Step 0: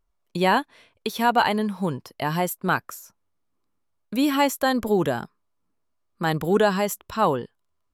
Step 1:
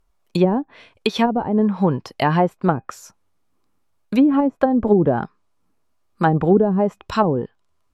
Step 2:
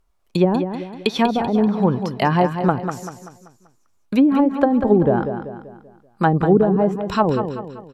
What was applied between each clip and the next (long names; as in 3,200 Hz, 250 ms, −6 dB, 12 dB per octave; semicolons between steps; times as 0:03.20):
hollow resonant body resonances 790/2,500 Hz, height 6 dB, ringing for 95 ms; treble cut that deepens with the level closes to 360 Hz, closed at −16.5 dBFS; level +8 dB
repeating echo 193 ms, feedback 43%, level −8.5 dB